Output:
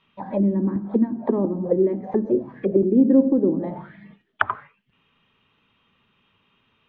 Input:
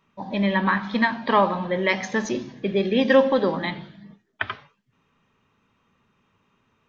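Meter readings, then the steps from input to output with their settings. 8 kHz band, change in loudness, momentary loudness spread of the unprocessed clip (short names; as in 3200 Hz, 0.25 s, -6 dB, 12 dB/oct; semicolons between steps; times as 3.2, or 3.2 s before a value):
n/a, +1.0 dB, 13 LU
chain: crackling interface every 0.69 s, samples 256, repeat, from 0.75; envelope low-pass 320–3300 Hz down, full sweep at -20 dBFS; gain -1 dB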